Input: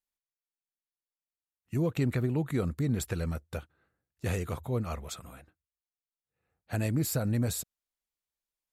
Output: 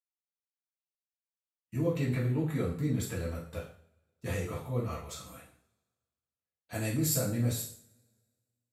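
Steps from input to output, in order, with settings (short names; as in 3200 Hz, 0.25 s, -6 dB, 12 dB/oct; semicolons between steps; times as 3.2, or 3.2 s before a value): gate with hold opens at -55 dBFS; 5.17–7.28 bell 7800 Hz +7 dB 2.1 oct; two-slope reverb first 0.47 s, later 1.7 s, from -27 dB, DRR -7 dB; gain -9 dB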